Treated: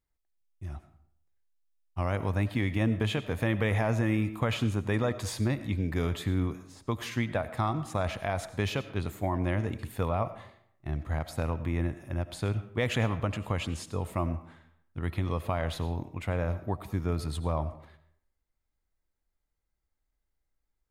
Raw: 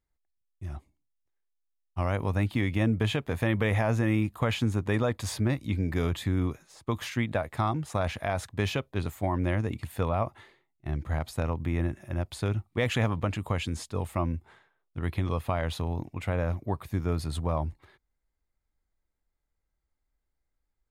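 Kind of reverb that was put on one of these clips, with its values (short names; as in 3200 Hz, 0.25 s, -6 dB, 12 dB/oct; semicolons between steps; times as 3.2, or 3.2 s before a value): digital reverb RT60 0.67 s, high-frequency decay 0.65×, pre-delay 50 ms, DRR 13 dB; gain -1.5 dB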